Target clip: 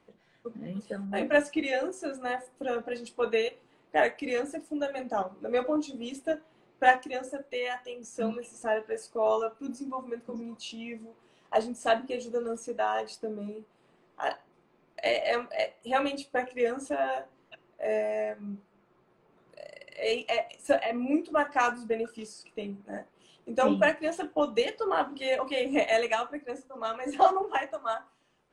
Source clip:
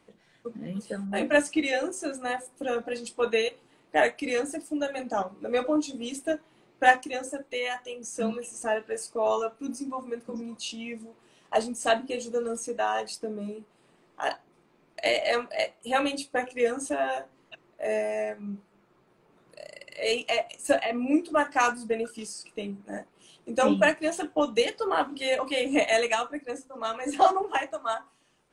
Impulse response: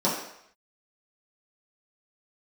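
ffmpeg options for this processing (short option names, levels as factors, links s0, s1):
-filter_complex "[0:a]lowpass=f=3400:p=1,asplit=2[s0][s1];[1:a]atrim=start_sample=2205,asetrate=83790,aresample=44100[s2];[s1][s2]afir=irnorm=-1:irlink=0,volume=0.0501[s3];[s0][s3]amix=inputs=2:normalize=0,volume=0.794"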